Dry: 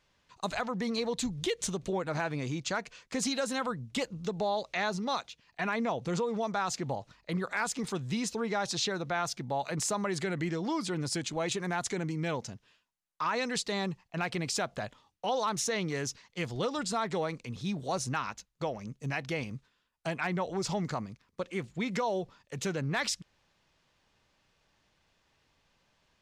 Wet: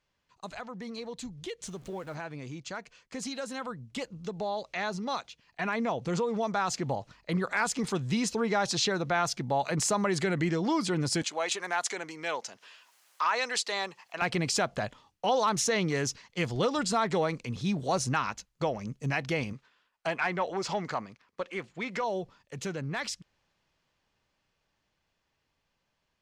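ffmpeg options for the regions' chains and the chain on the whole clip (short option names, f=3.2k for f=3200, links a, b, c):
-filter_complex "[0:a]asettb=1/sr,asplit=3[a][b][c];[a]atrim=end=1.674[d];[b]atrim=start=1.67:end=2.15,asetpts=PTS-STARTPTS,afade=t=in:d=0.004:c=qsin,afade=t=out:st=0.476:d=0.004:c=qsin,aeval=exprs='val(0)+0.5*0.00631*sgn(val(0))':c=same,highshelf=f=11k:g=4.5[e];[c]atrim=start=2.146[f];[d][e]acrossfade=d=0.004:c1=hsin:c2=qsin[g];[g][f]acrossfade=d=0.004:c1=qsin:c2=hsin,asettb=1/sr,asplit=3[h][i][j];[h]atrim=end=11.224[k];[i]atrim=start=11.22:end=14.22,asetpts=PTS-STARTPTS,afade=t=in:d=0.004:c=qsin,afade=t=out:st=2.996:d=0.004:c=qsin,highpass=620,acompressor=mode=upward:threshold=-45dB:ratio=2.5:attack=3.2:release=140:knee=2.83:detection=peak[l];[j]atrim=start=14.216[m];[k][l]acrossfade=d=0.004:c1=hsin:c2=qsin[n];[n][m]acrossfade=d=0.004:c1=qsin:c2=hsin,asettb=1/sr,asplit=3[o][p][q];[o]atrim=end=19.534[r];[p]atrim=start=19.53:end=22.04,asetpts=PTS-STARTPTS,afade=t=in:d=0.004:c=qsin,afade=t=out:st=2.506:d=0.004:c=qsin,lowshelf=f=170:g=-8,asplit=2[s][t];[t]highpass=f=720:p=1,volume=9dB,asoftclip=type=tanh:threshold=-20.5dB[u];[s][u]amix=inputs=2:normalize=0,lowpass=f=2.7k:p=1,volume=-6dB[v];[q]atrim=start=22.036[w];[r][v]acrossfade=d=0.004:c1=hsin:c2=qsin[x];[x][w]acrossfade=d=0.004:c1=qsin:c2=hsin,highshelf=f=12k:g=-6,dynaudnorm=f=650:g=17:m=12dB,bandreject=f=3.7k:w=24,volume=-7.5dB"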